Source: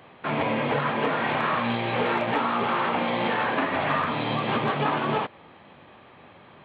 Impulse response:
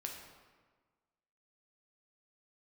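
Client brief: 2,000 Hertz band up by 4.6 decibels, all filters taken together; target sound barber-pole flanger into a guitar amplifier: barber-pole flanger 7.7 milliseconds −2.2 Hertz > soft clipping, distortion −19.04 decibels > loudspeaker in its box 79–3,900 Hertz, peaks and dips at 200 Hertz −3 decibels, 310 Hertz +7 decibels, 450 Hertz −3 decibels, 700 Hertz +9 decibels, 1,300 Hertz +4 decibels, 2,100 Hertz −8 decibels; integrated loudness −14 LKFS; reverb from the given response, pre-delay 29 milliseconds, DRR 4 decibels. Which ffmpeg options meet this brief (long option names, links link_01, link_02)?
-filter_complex "[0:a]equalizer=frequency=2000:width_type=o:gain=8.5,asplit=2[link_01][link_02];[1:a]atrim=start_sample=2205,adelay=29[link_03];[link_02][link_03]afir=irnorm=-1:irlink=0,volume=-2.5dB[link_04];[link_01][link_04]amix=inputs=2:normalize=0,asplit=2[link_05][link_06];[link_06]adelay=7.7,afreqshift=-2.2[link_07];[link_05][link_07]amix=inputs=2:normalize=1,asoftclip=threshold=-17dB,highpass=79,equalizer=frequency=200:width_type=q:width=4:gain=-3,equalizer=frequency=310:width_type=q:width=4:gain=7,equalizer=frequency=450:width_type=q:width=4:gain=-3,equalizer=frequency=700:width_type=q:width=4:gain=9,equalizer=frequency=1300:width_type=q:width=4:gain=4,equalizer=frequency=2100:width_type=q:width=4:gain=-8,lowpass=frequency=3900:width=0.5412,lowpass=frequency=3900:width=1.3066,volume=10dB"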